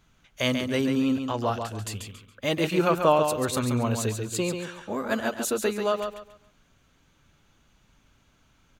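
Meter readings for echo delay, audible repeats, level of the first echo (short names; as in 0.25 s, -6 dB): 0.139 s, 3, -6.5 dB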